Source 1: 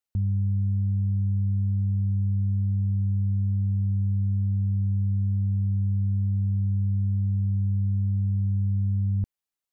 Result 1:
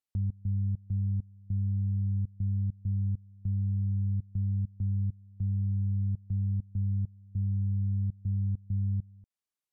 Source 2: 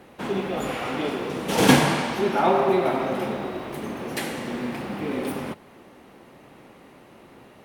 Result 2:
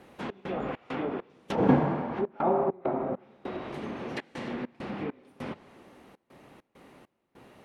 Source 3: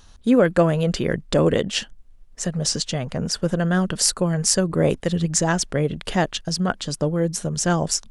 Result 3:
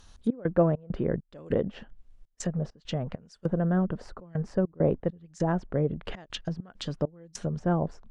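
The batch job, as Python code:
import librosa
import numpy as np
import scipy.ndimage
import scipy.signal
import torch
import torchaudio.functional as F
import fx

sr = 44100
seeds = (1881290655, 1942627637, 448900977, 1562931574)

y = fx.step_gate(x, sr, bpm=100, pattern='xx.xx.xx..xxx', floor_db=-24.0, edge_ms=4.5)
y = fx.env_lowpass_down(y, sr, base_hz=940.0, full_db=-21.5)
y = y * librosa.db_to_amplitude(-4.5)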